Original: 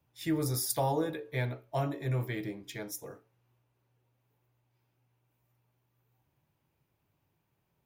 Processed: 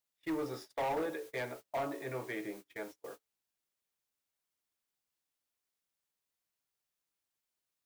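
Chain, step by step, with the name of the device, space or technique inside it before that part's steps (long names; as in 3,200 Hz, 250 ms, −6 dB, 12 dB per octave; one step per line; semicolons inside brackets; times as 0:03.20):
aircraft radio (band-pass filter 370–2,400 Hz; hard clipping −32 dBFS, distortion −10 dB; white noise bed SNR 16 dB; noise gate −48 dBFS, range −30 dB)
level +1 dB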